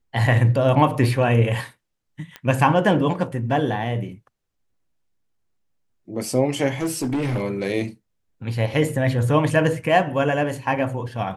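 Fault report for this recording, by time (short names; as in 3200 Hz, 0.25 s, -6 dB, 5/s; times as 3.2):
2.36 pop -18 dBFS
6.81–7.43 clipped -19.5 dBFS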